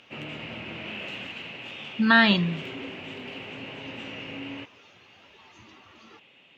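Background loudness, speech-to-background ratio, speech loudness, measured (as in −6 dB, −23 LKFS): −37.0 LKFS, 16.0 dB, −21.0 LKFS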